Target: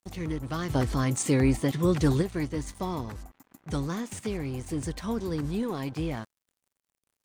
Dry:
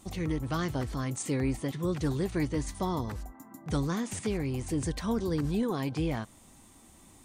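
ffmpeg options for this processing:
-filter_complex "[0:a]asplit=3[s0][s1][s2];[s0]afade=t=out:st=0.69:d=0.02[s3];[s1]acontrast=84,afade=t=in:st=0.69:d=0.02,afade=t=out:st=2.21:d=0.02[s4];[s2]afade=t=in:st=2.21:d=0.02[s5];[s3][s4][s5]amix=inputs=3:normalize=0,aeval=exprs='sgn(val(0))*max(abs(val(0))-0.00398,0)':c=same"

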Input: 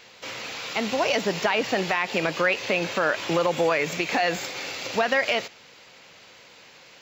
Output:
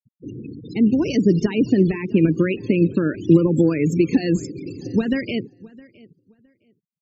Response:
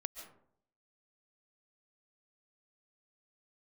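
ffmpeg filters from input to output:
-filter_complex "[0:a]bass=f=250:g=12,treble=f=4000:g=12,aeval=exprs='val(0)+0.00355*sin(2*PI*2800*n/s)':c=same,lowshelf=f=480:t=q:w=3:g=12,afftfilt=real='re*gte(hypot(re,im),0.112)':imag='im*gte(hypot(re,im),0.112)':win_size=1024:overlap=0.75,asplit=2[s0][s1];[s1]adelay=663,lowpass=f=3000:p=1,volume=0.075,asplit=2[s2][s3];[s3]adelay=663,lowpass=f=3000:p=1,volume=0.22[s4];[s2][s4]amix=inputs=2:normalize=0[s5];[s0][s5]amix=inputs=2:normalize=0,volume=0.422"

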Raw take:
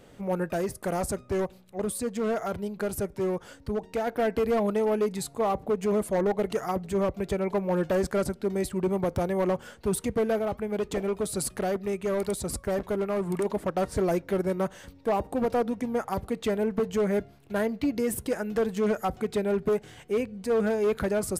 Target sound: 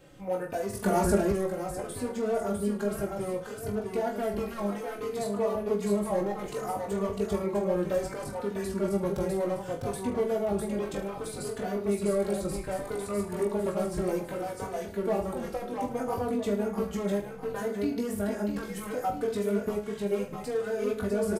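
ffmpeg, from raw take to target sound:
-filter_complex "[0:a]asplit=2[s0][s1];[s1]aecho=0:1:652|1304|1956|2608:0.562|0.174|0.054|0.0168[s2];[s0][s2]amix=inputs=2:normalize=0,acrossover=split=1300|4500[s3][s4][s5];[s3]acompressor=threshold=0.0501:ratio=4[s6];[s4]acompressor=threshold=0.00447:ratio=4[s7];[s5]acompressor=threshold=0.00708:ratio=4[s8];[s6][s7][s8]amix=inputs=3:normalize=0,asplit=2[s9][s10];[s10]aecho=0:1:20|44|72.8|107.4|148.8:0.631|0.398|0.251|0.158|0.1[s11];[s9][s11]amix=inputs=2:normalize=0,asettb=1/sr,asplit=3[s12][s13][s14];[s12]atrim=end=0.734[s15];[s13]atrim=start=0.73:end=1.32,asetpts=PTS-STARTPTS,afade=t=in:d=0.004:c=qsin,afade=t=out:st=0.586:d=0.004:c=qsin,acontrast=87[s16];[s14]atrim=start=1.316[s17];[s15][s16]acrossfade=d=0.004:c1=hsin:c2=qsin[s18];[s18][s17]acrossfade=d=0.004:c1=qsin:c2=hsin,asplit=2[s19][s20];[s20]adelay=3.3,afreqshift=-0.64[s21];[s19][s21]amix=inputs=2:normalize=1"

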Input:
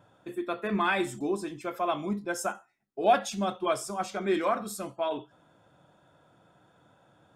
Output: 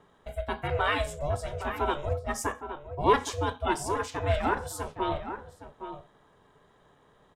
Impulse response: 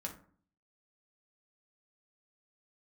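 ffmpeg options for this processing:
-filter_complex "[0:a]asplit=2[s0][s1];[s1]adelay=816.3,volume=0.355,highshelf=f=4000:g=-18.4[s2];[s0][s2]amix=inputs=2:normalize=0,aeval=exprs='val(0)*sin(2*PI*290*n/s)':c=same,volume=1.41"

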